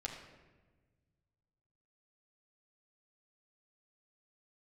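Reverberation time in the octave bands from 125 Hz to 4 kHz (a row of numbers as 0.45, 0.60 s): 2.6, 2.0, 1.5, 1.1, 1.1, 0.80 s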